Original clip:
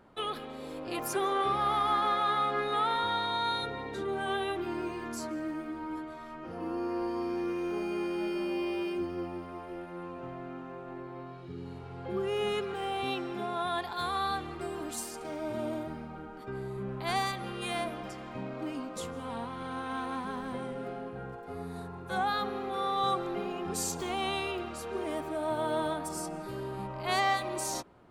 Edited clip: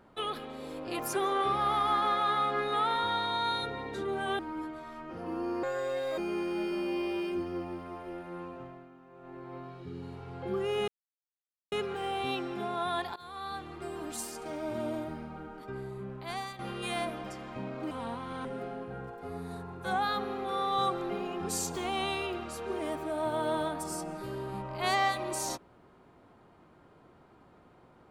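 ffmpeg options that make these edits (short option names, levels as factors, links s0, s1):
-filter_complex "[0:a]asplit=11[s0][s1][s2][s3][s4][s5][s6][s7][s8][s9][s10];[s0]atrim=end=4.392[s11];[s1]atrim=start=5.728:end=6.974[s12];[s2]atrim=start=6.97:end=7.81,asetpts=PTS-STARTPTS,asetrate=67473,aresample=44100[s13];[s3]atrim=start=7.806:end=10.52,asetpts=PTS-STARTPTS,afade=t=out:st=2.254:d=0.46:silence=0.237137[s14];[s4]atrim=start=10.52:end=10.73,asetpts=PTS-STARTPTS,volume=0.237[s15];[s5]atrim=start=10.73:end=12.51,asetpts=PTS-STARTPTS,afade=t=in:d=0.46:silence=0.237137,afade=t=out:st=1.776:d=0.004:c=hsin,apad=pad_dur=0.84[s16];[s6]atrim=start=12.51:end=13.95,asetpts=PTS-STARTPTS,afade=t=in:d=0.004:c=hsin,afade=t=out:st=1.436:d=0.004:c=hsin:silence=0.105925[s17];[s7]atrim=start=13.95:end=17.38,asetpts=PTS-STARTPTS,afade=t=in:d=1.39:c=qsin:silence=0.105925,afade=t=out:st=2.36:d=1.07:silence=0.298538[s18];[s8]atrim=start=17.38:end=18.702,asetpts=PTS-STARTPTS,afade=t=in:d=0.004:c=hsin:silence=0.298538[s19];[s9]atrim=start=19.208:end=19.752[s20];[s10]atrim=start=20.698[s21];[s11][s12]acrossfade=d=0.004:c1=hsin:c2=hsin[s22];[s22][s13]acrossfade=d=0.004:c1=hsin:c2=hsin[s23];[s14][s15][s16][s17][s18][s19]concat=n=6:v=0:a=1[s24];[s23][s24]acrossfade=d=0.004:c1=hsin:c2=hsin[s25];[s25][s20]acrossfade=d=0.004:c1=hsin:c2=hsin[s26];[s26][s21]acrossfade=d=0.004:c1=hsin:c2=hsin"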